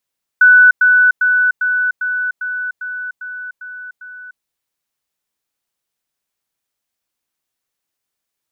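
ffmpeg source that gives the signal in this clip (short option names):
-f lavfi -i "aevalsrc='pow(10,(-4-3*floor(t/0.4))/20)*sin(2*PI*1490*t)*clip(min(mod(t,0.4),0.3-mod(t,0.4))/0.005,0,1)':d=4:s=44100"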